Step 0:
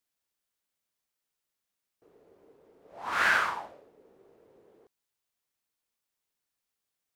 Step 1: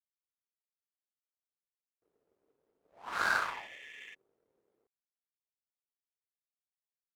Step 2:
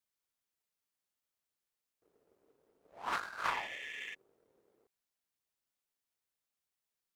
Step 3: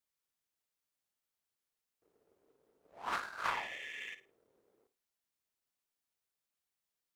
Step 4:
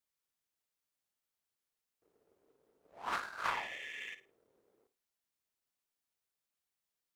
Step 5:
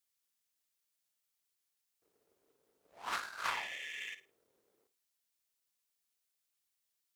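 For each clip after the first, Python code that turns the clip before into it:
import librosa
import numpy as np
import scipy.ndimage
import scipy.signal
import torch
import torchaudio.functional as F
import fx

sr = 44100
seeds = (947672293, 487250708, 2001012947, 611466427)

y1 = fx.spec_repair(x, sr, seeds[0], start_s=3.19, length_s=0.92, low_hz=1700.0, high_hz=3600.0, source='before')
y1 = fx.power_curve(y1, sr, exponent=1.4)
y1 = F.gain(torch.from_numpy(y1), -1.5).numpy()
y2 = fx.over_compress(y1, sr, threshold_db=-37.0, ratio=-0.5)
y2 = F.gain(torch.from_numpy(y2), 1.0).numpy()
y3 = fx.room_flutter(y2, sr, wall_m=9.3, rt60_s=0.27)
y3 = F.gain(torch.from_numpy(y3), -1.0).numpy()
y4 = y3
y5 = fx.high_shelf(y4, sr, hz=2000.0, db=10.5)
y5 = F.gain(torch.from_numpy(y5), -4.5).numpy()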